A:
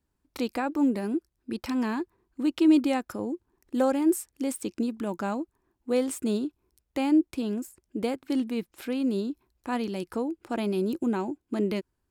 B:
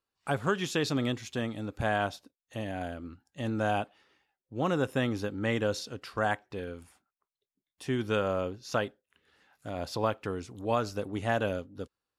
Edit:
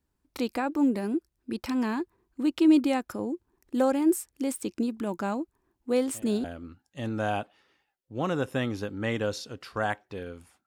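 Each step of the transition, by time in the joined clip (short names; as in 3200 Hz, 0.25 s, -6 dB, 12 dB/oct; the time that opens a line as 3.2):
A
6.02 add B from 2.43 s 0.42 s -13.5 dB
6.44 switch to B from 2.85 s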